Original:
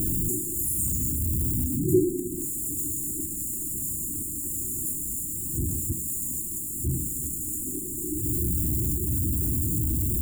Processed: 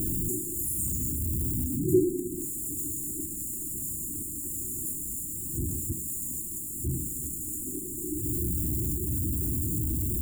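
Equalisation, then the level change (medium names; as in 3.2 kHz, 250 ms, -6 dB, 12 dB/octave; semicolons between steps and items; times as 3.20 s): dynamic bell 700 Hz, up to +7 dB, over -51 dBFS, Q 1; -3.5 dB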